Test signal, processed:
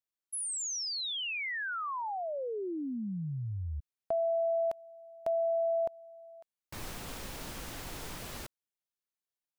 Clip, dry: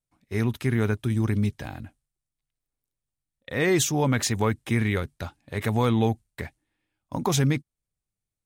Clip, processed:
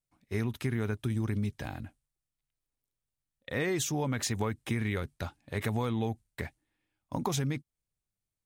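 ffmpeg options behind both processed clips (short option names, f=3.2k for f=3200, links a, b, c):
-af "acompressor=threshold=-25dB:ratio=6,volume=-2.5dB"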